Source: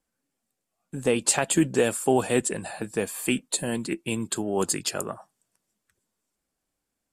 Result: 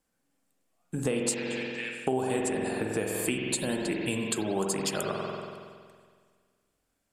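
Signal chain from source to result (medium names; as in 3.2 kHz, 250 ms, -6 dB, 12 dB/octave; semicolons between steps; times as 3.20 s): 1.34–2.07 s: ladder band-pass 2.4 kHz, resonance 65%; spring tank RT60 1.8 s, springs 46 ms, chirp 50 ms, DRR 0.5 dB; compression 4:1, threshold -29 dBFS, peak gain reduction 13.5 dB; trim +2 dB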